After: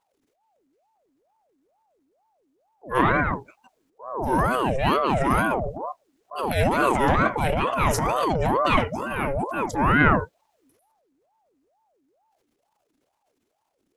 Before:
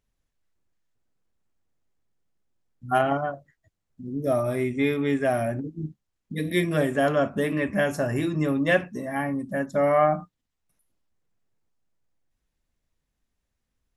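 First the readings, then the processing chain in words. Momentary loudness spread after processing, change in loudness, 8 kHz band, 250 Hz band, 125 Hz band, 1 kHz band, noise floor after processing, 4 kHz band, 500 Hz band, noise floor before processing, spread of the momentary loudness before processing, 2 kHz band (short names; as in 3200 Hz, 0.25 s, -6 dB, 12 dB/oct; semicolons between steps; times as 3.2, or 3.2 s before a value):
11 LU, +2.5 dB, +6.5 dB, 0.0 dB, +3.0 dB, +7.0 dB, -74 dBFS, +4.5 dB, -1.0 dB, -81 dBFS, 11 LU, +4.5 dB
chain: transient shaper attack -8 dB, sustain +9 dB; ring modulator with a swept carrier 580 Hz, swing 55%, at 2.2 Hz; gain +5.5 dB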